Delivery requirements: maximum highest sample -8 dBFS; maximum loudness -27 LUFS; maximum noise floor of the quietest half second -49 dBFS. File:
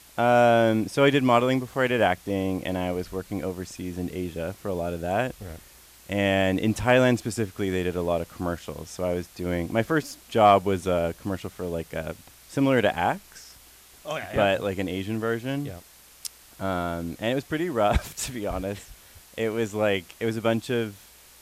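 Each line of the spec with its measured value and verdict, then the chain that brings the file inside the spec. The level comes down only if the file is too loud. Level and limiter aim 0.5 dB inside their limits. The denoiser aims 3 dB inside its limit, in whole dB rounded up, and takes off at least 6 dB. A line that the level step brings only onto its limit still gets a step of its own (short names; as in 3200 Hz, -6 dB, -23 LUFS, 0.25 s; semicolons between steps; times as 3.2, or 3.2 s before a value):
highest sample -6.5 dBFS: fail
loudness -25.5 LUFS: fail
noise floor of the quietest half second -52 dBFS: OK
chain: gain -2 dB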